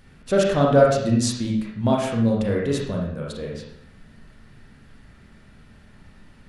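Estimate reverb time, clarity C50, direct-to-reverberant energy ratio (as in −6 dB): 0.70 s, 1.5 dB, −2.5 dB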